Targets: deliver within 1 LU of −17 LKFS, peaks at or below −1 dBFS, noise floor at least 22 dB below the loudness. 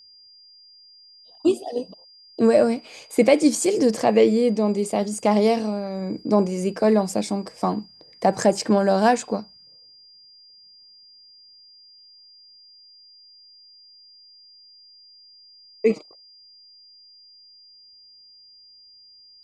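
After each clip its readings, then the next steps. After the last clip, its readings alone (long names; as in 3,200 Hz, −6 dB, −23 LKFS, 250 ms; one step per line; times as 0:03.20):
interfering tone 4,800 Hz; level of the tone −48 dBFS; integrated loudness −21.5 LKFS; sample peak −3.5 dBFS; target loudness −17.0 LKFS
→ notch filter 4,800 Hz, Q 30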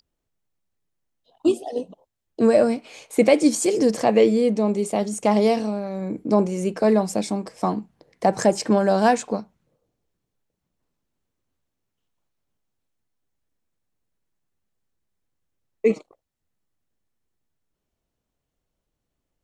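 interfering tone none found; integrated loudness −21.5 LKFS; sample peak −3.5 dBFS; target loudness −17.0 LKFS
→ level +4.5 dB
brickwall limiter −1 dBFS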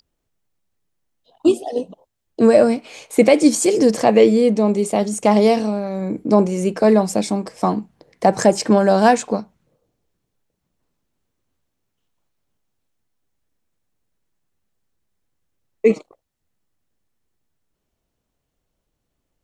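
integrated loudness −17.0 LKFS; sample peak −1.0 dBFS; background noise floor −77 dBFS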